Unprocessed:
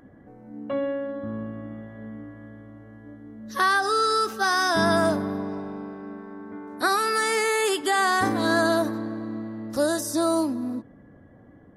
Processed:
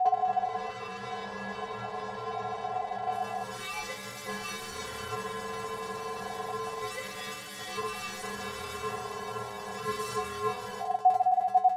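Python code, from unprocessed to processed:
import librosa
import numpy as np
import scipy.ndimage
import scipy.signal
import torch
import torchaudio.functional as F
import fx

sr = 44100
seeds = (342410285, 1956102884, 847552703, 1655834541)

y = fx.bin_compress(x, sr, power=0.6)
y = fx.schmitt(y, sr, flips_db=-30.0)
y = fx.low_shelf(y, sr, hz=350.0, db=5.5)
y = fx.transient(y, sr, attack_db=8, sustain_db=-5)
y = y + 0.64 * np.pad(y, (int(1.0 * sr / 1000.0), 0))[:len(y)]
y = fx.lowpass(y, sr, hz=fx.steps((0.0, 4400.0), (3.12, 11000.0)), slope=12)
y = fx.stiff_resonator(y, sr, f0_hz=310.0, decay_s=0.35, stiffness=0.002)
y = y * np.sin(2.0 * np.pi * 740.0 * np.arange(len(y)) / sr)
y = y * 10.0 ** (3.5 / 20.0)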